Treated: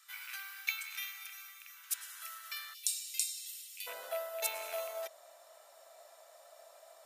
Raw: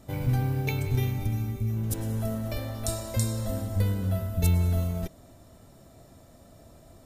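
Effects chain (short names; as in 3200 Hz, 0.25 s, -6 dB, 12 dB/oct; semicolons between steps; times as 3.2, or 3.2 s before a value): rattling part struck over -22 dBFS, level -36 dBFS; elliptic high-pass 1300 Hz, stop band 80 dB, from 2.73 s 2500 Hz, from 3.86 s 590 Hz; gain +1 dB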